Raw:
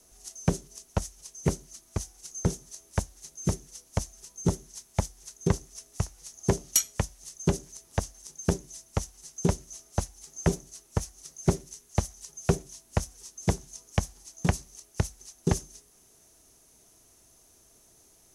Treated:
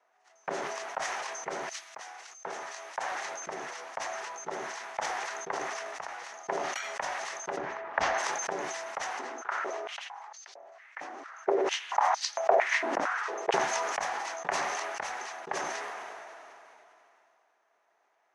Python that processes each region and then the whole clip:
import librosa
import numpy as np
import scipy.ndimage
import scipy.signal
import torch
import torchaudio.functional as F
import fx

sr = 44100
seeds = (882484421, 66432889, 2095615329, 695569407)

y = fx.chain(x, sr, fx.low_shelf(hz=300.0, db=-11.0),
    fx.band_widen(depth_pct=70), at=(1.69, 3.12))
y = fx.chain(y, sr, fx.lowpass(hz=4500.0, slope=12),
    fx.low_shelf(hz=220.0, db=9.0),
    fx.band_squash(depth_pct=100), at=(7.57, 8.18))
y = fx.chain(y, sr, fx.tilt_eq(slope=-3.5),
    fx.filter_held_highpass(hz=4.4, low_hz=280.0, high_hz=4500.0), at=(9.19, 13.54))
y = scipy.signal.sosfilt(scipy.signal.cheby1(2, 1.0, [750.0, 1900.0], 'bandpass', fs=sr, output='sos'), y)
y = fx.sustainer(y, sr, db_per_s=20.0)
y = y * librosa.db_to_amplitude(1.5)